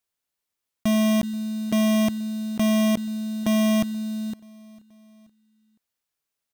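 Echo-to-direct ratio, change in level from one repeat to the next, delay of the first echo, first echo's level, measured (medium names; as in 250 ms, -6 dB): -22.5 dB, -5.5 dB, 480 ms, -24.0 dB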